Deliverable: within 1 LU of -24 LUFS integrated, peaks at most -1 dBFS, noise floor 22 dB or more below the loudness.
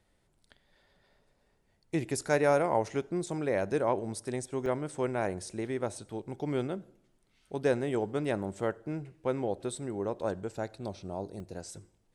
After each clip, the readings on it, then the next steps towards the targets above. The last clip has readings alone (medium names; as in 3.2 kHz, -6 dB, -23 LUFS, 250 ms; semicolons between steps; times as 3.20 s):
dropouts 2; longest dropout 1.2 ms; loudness -33.0 LUFS; peak level -13.5 dBFS; loudness target -24.0 LUFS
-> interpolate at 4.66/11.40 s, 1.2 ms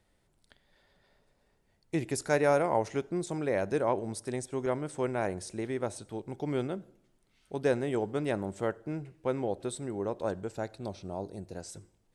dropouts 0; loudness -33.0 LUFS; peak level -13.5 dBFS; loudness target -24.0 LUFS
-> trim +9 dB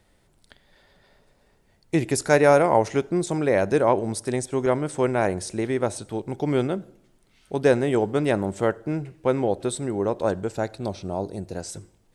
loudness -24.0 LUFS; peak level -4.5 dBFS; noise floor -63 dBFS